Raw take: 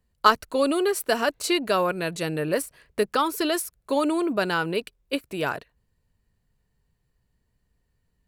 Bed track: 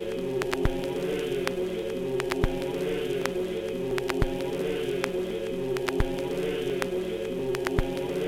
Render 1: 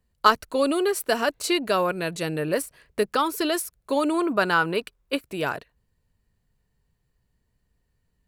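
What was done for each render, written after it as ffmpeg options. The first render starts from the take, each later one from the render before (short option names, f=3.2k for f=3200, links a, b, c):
-filter_complex "[0:a]asettb=1/sr,asplit=3[a][b][c];[a]atrim=end=4.144[d];[b]atrim=start=4.14:end=5.17,asetpts=PTS-STARTPTS,afade=t=in:d=0.004:c=qsin,afade=t=out:st=1.026:d=0.004:c=qsin,equalizer=f=1.2k:t=o:w=1.1:g=6.5[e];[c]atrim=start=5.166[f];[d][e]acrossfade=d=0.004:c1=hsin:c2=qsin[g];[g][f]acrossfade=d=0.004:c1=qsin:c2=hsin"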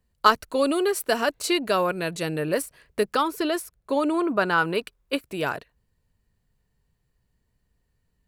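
-filter_complex "[0:a]asettb=1/sr,asplit=3[a][b][c];[a]atrim=end=3.234[d];[b]atrim=start=3.23:end=4.58,asetpts=PTS-STARTPTS,afade=t=in:d=0.004:c=qsin,afade=t=out:st=1.346:d=0.004:c=qsin,highshelf=f=3.3k:g=-7[e];[c]atrim=start=4.576[f];[d][e]acrossfade=d=0.004:c1=hsin:c2=qsin[g];[g][f]acrossfade=d=0.004:c1=qsin:c2=hsin"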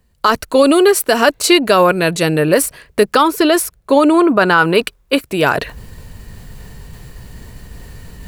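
-af "areverse,acompressor=mode=upward:threshold=-26dB:ratio=2.5,areverse,alimiter=level_in=13dB:limit=-1dB:release=50:level=0:latency=1"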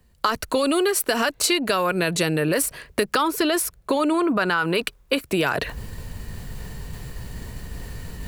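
-filter_complex "[0:a]acrossover=split=110|1200[a][b][c];[b]alimiter=limit=-10dB:level=0:latency=1[d];[a][d][c]amix=inputs=3:normalize=0,acompressor=threshold=-18dB:ratio=6"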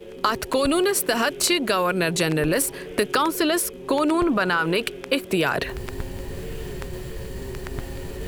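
-filter_complex "[1:a]volume=-8dB[a];[0:a][a]amix=inputs=2:normalize=0"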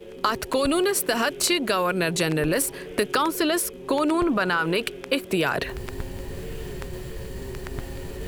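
-af "volume=-1.5dB"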